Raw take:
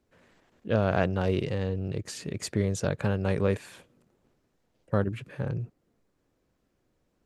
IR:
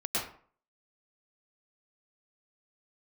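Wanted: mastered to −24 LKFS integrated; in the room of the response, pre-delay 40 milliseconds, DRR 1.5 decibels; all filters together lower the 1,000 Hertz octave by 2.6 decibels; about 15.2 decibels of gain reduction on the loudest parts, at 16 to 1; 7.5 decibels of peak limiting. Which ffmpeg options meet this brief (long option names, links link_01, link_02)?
-filter_complex "[0:a]equalizer=frequency=1000:width_type=o:gain=-4,acompressor=threshold=-35dB:ratio=16,alimiter=level_in=6.5dB:limit=-24dB:level=0:latency=1,volume=-6.5dB,asplit=2[link_01][link_02];[1:a]atrim=start_sample=2205,adelay=40[link_03];[link_02][link_03]afir=irnorm=-1:irlink=0,volume=-8.5dB[link_04];[link_01][link_04]amix=inputs=2:normalize=0,volume=17dB"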